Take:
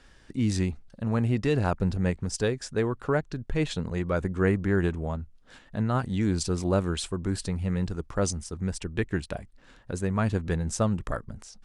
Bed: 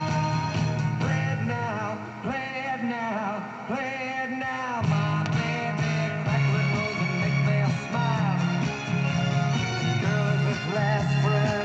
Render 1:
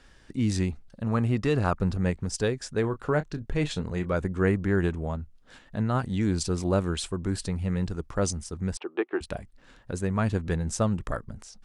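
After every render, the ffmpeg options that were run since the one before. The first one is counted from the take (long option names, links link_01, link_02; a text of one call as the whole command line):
ffmpeg -i in.wav -filter_complex "[0:a]asettb=1/sr,asplit=3[link_01][link_02][link_03];[link_01]atrim=end=1.084[link_04];[link_02]atrim=start=1.08:end=2.03,asetpts=PTS-STARTPTS,afade=type=in:duration=0.004:curve=qsin,afade=type=out:start_time=0.946:duration=0.004:curve=qsin,equalizer=frequency=1200:width_type=o:width=0.32:gain=7[link_05];[link_03]atrim=start=2.026[link_06];[link_04][link_05]acrossfade=duration=0.004:curve1=hsin:curve2=qsin[link_07];[link_07][link_06]acrossfade=duration=0.004:curve1=qsin:curve2=hsin,asettb=1/sr,asplit=3[link_08][link_09][link_10];[link_08]atrim=end=2.814[link_11];[link_09]atrim=start=2.81:end=4.14,asetpts=PTS-STARTPTS,afade=type=in:duration=0.004:curve=qsin,afade=type=out:start_time=1.326:duration=0.004:curve=qsin,asplit=2[link_12][link_13];[link_13]adelay=27,volume=-11.5dB[link_14];[link_12][link_14]amix=inputs=2:normalize=0,atrim=end_sample=58653[link_15];[link_10]atrim=start=4.136[link_16];[link_11][link_15]acrossfade=duration=0.004:curve1=hsin:curve2=qsin[link_17];[link_17][link_16]acrossfade=duration=0.004:curve1=qsin:curve2=hsin,asettb=1/sr,asplit=3[link_18][link_19][link_20];[link_18]atrim=end=8.774[link_21];[link_19]atrim=start=8.77:end=9.21,asetpts=PTS-STARTPTS,afade=type=in:duration=0.004:curve=qsin,afade=type=out:start_time=0.436:duration=0.004:curve=qsin,highpass=frequency=350:width=0.5412,highpass=frequency=350:width=1.3066,equalizer=frequency=350:width_type=q:width=4:gain=9,equalizer=frequency=790:width_type=q:width=4:gain=10,equalizer=frequency=1200:width_type=q:width=4:gain=8,equalizer=frequency=1900:width_type=q:width=4:gain=-5,lowpass=frequency=3100:width=0.5412,lowpass=frequency=3100:width=1.3066[link_22];[link_20]atrim=start=9.206[link_23];[link_21][link_22]acrossfade=duration=0.004:curve1=hsin:curve2=qsin[link_24];[link_24][link_23]acrossfade=duration=0.004:curve1=qsin:curve2=hsin" out.wav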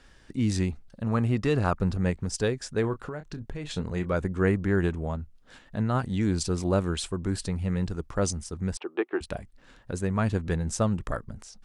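ffmpeg -i in.wav -filter_complex "[0:a]asettb=1/sr,asplit=3[link_01][link_02][link_03];[link_01]atrim=end=2.934[link_04];[link_02]atrim=start=2.93:end=3.74,asetpts=PTS-STARTPTS,afade=type=in:duration=0.004:curve=qsin,afade=type=out:start_time=0.806:duration=0.004:curve=qsin,acompressor=threshold=-31dB:ratio=10:attack=3.2:release=140:knee=1:detection=peak[link_05];[link_03]atrim=start=3.736[link_06];[link_04][link_05]acrossfade=duration=0.004:curve1=hsin:curve2=qsin[link_07];[link_07][link_06]acrossfade=duration=0.004:curve1=qsin:curve2=hsin" out.wav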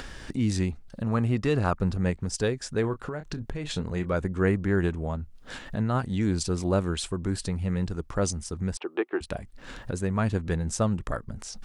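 ffmpeg -i in.wav -af "acompressor=mode=upward:threshold=-27dB:ratio=2.5" out.wav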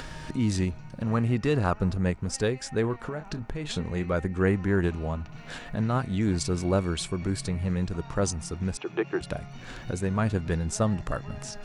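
ffmpeg -i in.wav -i bed.wav -filter_complex "[1:a]volume=-19.5dB[link_01];[0:a][link_01]amix=inputs=2:normalize=0" out.wav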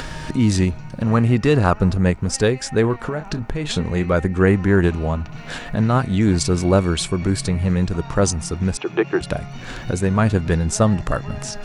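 ffmpeg -i in.wav -af "volume=9dB,alimiter=limit=-3dB:level=0:latency=1" out.wav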